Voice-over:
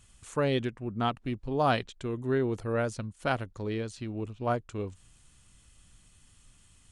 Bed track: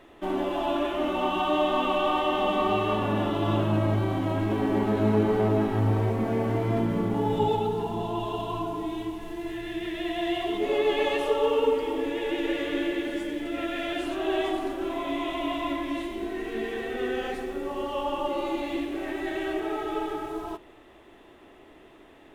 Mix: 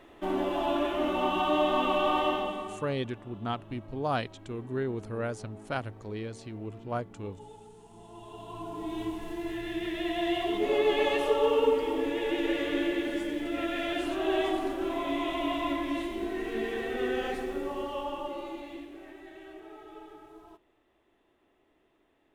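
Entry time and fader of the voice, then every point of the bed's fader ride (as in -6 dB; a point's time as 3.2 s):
2.45 s, -4.0 dB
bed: 2.28 s -1.5 dB
3 s -24.5 dB
7.82 s -24.5 dB
9.03 s -1 dB
17.57 s -1 dB
19.3 s -17.5 dB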